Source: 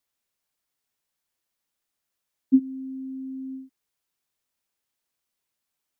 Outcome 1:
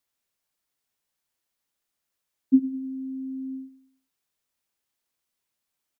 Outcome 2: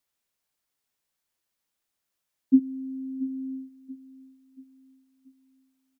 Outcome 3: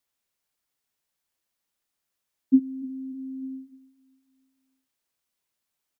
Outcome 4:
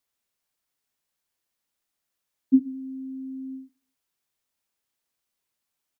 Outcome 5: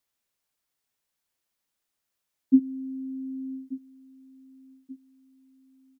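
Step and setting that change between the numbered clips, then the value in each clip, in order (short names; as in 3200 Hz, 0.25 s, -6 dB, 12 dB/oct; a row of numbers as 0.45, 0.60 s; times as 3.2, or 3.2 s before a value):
feedback echo, time: 102, 682, 298, 66, 1184 ms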